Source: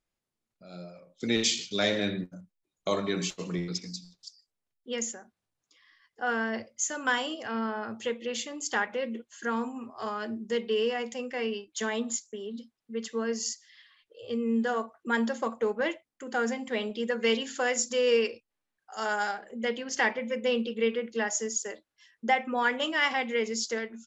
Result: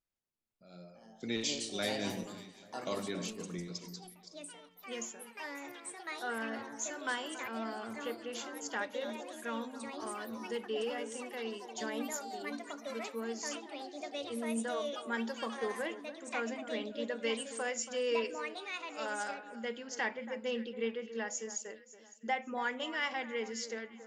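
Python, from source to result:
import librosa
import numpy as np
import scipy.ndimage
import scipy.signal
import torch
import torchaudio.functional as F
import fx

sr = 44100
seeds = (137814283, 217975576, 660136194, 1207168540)

y = fx.echo_alternate(x, sr, ms=279, hz=1700.0, feedback_pct=53, wet_db=-12.5)
y = fx.echo_pitch(y, sr, ms=459, semitones=4, count=3, db_per_echo=-6.0)
y = y * 10.0 ** (-9.0 / 20.0)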